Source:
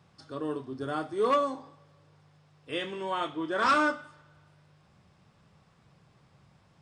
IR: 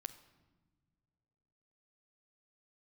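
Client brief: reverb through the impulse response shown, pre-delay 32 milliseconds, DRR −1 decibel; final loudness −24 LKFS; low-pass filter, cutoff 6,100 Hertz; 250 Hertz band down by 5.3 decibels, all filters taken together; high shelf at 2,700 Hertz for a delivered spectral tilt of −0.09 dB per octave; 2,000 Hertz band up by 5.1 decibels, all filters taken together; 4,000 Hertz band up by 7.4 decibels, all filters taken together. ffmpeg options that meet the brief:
-filter_complex "[0:a]lowpass=6100,equalizer=frequency=250:width_type=o:gain=-7.5,equalizer=frequency=2000:width_type=o:gain=5,highshelf=frequency=2700:gain=6,equalizer=frequency=4000:width_type=o:gain=3.5,asplit=2[link_01][link_02];[1:a]atrim=start_sample=2205,adelay=32[link_03];[link_02][link_03]afir=irnorm=-1:irlink=0,volume=4.5dB[link_04];[link_01][link_04]amix=inputs=2:normalize=0"

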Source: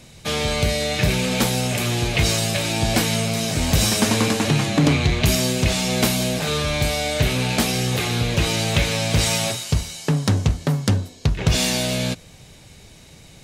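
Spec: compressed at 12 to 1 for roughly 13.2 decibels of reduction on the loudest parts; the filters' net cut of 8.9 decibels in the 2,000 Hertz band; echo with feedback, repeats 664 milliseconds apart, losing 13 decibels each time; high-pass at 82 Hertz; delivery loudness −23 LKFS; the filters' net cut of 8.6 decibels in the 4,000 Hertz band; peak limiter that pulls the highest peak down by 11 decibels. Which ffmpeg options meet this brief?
ffmpeg -i in.wav -af "highpass=82,equalizer=frequency=2000:width_type=o:gain=-8.5,equalizer=frequency=4000:width_type=o:gain=-8.5,acompressor=threshold=-28dB:ratio=12,alimiter=limit=-23.5dB:level=0:latency=1,aecho=1:1:664|1328|1992:0.224|0.0493|0.0108,volume=10.5dB" out.wav

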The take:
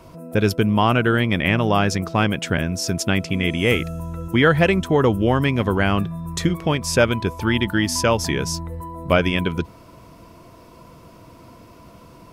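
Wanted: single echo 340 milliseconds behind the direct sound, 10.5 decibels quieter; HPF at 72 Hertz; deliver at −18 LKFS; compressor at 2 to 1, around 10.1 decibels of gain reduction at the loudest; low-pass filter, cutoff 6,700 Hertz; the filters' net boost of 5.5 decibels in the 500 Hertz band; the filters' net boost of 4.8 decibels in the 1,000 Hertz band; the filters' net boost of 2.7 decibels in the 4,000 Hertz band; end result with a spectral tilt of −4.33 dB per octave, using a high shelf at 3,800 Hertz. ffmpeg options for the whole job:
ffmpeg -i in.wav -af "highpass=72,lowpass=6700,equalizer=frequency=500:width_type=o:gain=5.5,equalizer=frequency=1000:width_type=o:gain=4.5,highshelf=frequency=3800:gain=-5.5,equalizer=frequency=4000:width_type=o:gain=7.5,acompressor=threshold=-26dB:ratio=2,aecho=1:1:340:0.299,volume=7dB" out.wav

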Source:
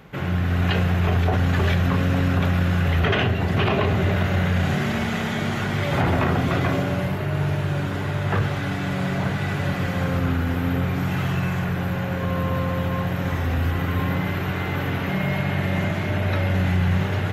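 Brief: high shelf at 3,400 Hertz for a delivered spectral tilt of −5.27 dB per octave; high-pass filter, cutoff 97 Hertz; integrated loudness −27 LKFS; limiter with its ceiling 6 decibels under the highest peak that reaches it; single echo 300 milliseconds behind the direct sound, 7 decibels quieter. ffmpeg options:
ffmpeg -i in.wav -af "highpass=97,highshelf=frequency=3400:gain=3.5,alimiter=limit=-15dB:level=0:latency=1,aecho=1:1:300:0.447,volume=-3dB" out.wav

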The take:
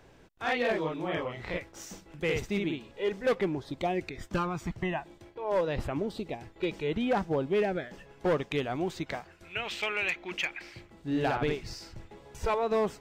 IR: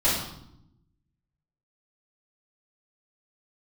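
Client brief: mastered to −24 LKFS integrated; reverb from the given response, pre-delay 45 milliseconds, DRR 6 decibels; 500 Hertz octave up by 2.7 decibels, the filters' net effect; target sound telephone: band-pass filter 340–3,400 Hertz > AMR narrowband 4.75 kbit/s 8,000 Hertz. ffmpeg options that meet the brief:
-filter_complex "[0:a]equalizer=frequency=500:width_type=o:gain=4.5,asplit=2[link_01][link_02];[1:a]atrim=start_sample=2205,adelay=45[link_03];[link_02][link_03]afir=irnorm=-1:irlink=0,volume=-20dB[link_04];[link_01][link_04]amix=inputs=2:normalize=0,highpass=340,lowpass=3400,volume=7.5dB" -ar 8000 -c:a libopencore_amrnb -b:a 4750

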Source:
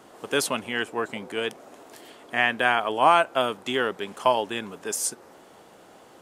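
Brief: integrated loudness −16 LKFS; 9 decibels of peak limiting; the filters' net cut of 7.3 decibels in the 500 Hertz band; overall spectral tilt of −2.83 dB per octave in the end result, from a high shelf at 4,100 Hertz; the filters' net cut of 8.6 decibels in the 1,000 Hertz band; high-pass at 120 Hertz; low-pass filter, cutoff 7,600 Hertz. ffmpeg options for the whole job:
ffmpeg -i in.wav -af "highpass=120,lowpass=7600,equalizer=frequency=500:width_type=o:gain=-6.5,equalizer=frequency=1000:width_type=o:gain=-8.5,highshelf=frequency=4100:gain=-8.5,volume=19dB,alimiter=limit=-2dB:level=0:latency=1" out.wav

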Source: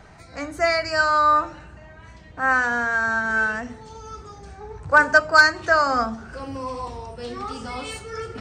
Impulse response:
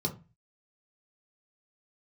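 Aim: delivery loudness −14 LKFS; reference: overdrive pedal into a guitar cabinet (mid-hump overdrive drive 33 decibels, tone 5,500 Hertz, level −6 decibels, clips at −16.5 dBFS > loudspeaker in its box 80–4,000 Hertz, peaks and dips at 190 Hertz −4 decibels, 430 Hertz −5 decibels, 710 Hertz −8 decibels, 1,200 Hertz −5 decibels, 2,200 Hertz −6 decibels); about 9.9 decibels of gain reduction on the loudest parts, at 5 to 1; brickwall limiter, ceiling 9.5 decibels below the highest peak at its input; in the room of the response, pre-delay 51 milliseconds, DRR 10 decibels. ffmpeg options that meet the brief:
-filter_complex "[0:a]acompressor=threshold=-20dB:ratio=5,alimiter=limit=-19.5dB:level=0:latency=1,asplit=2[link_01][link_02];[1:a]atrim=start_sample=2205,adelay=51[link_03];[link_02][link_03]afir=irnorm=-1:irlink=0,volume=-14.5dB[link_04];[link_01][link_04]amix=inputs=2:normalize=0,asplit=2[link_05][link_06];[link_06]highpass=frequency=720:poles=1,volume=33dB,asoftclip=type=tanh:threshold=-16.5dB[link_07];[link_05][link_07]amix=inputs=2:normalize=0,lowpass=frequency=5500:poles=1,volume=-6dB,highpass=80,equalizer=frequency=190:width_type=q:width=4:gain=-4,equalizer=frequency=430:width_type=q:width=4:gain=-5,equalizer=frequency=710:width_type=q:width=4:gain=-8,equalizer=frequency=1200:width_type=q:width=4:gain=-5,equalizer=frequency=2200:width_type=q:width=4:gain=-6,lowpass=frequency=4000:width=0.5412,lowpass=frequency=4000:width=1.3066,volume=11.5dB"

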